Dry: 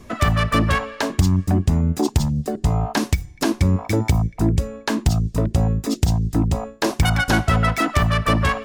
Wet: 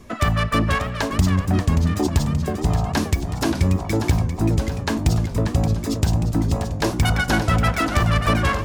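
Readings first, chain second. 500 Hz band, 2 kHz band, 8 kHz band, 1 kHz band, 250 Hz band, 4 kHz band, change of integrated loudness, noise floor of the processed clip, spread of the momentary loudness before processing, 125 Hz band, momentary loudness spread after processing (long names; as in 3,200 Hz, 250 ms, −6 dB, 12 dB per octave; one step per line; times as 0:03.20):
−0.5 dB, −1.0 dB, −0.5 dB, −1.0 dB, −0.5 dB, −0.5 dB, −0.5 dB, −29 dBFS, 5 LU, −0.5 dB, 4 LU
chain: feedback echo with a swinging delay time 581 ms, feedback 66%, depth 173 cents, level −8.5 dB
level −1.5 dB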